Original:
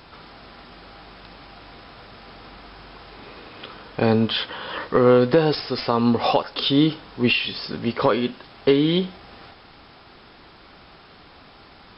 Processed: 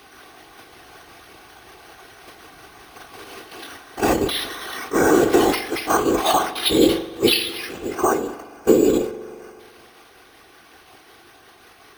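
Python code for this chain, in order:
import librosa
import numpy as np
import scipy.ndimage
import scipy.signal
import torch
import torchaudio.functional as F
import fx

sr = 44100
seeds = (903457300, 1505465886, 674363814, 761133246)

p1 = fx.pitch_ramps(x, sr, semitones=3.5, every_ms=222)
p2 = fx.low_shelf(p1, sr, hz=180.0, db=-6.5)
p3 = fx.level_steps(p2, sr, step_db=22)
p4 = p2 + (p3 * librosa.db_to_amplitude(-1.5))
p5 = fx.spec_box(p4, sr, start_s=7.73, length_s=1.86, low_hz=1700.0, high_hz=4500.0, gain_db=-16)
p6 = fx.robotise(p5, sr, hz=378.0)
p7 = np.repeat(p6[::6], 6)[:len(p6)]
p8 = fx.whisperise(p7, sr, seeds[0])
p9 = scipy.signal.sosfilt(scipy.signal.butter(2, 41.0, 'highpass', fs=sr, output='sos'), p8)
p10 = fx.rev_spring(p9, sr, rt60_s=2.0, pass_ms=(42,), chirp_ms=50, drr_db=13.5)
p11 = fx.sustainer(p10, sr, db_per_s=100.0)
y = p11 * librosa.db_to_amplitude(2.0)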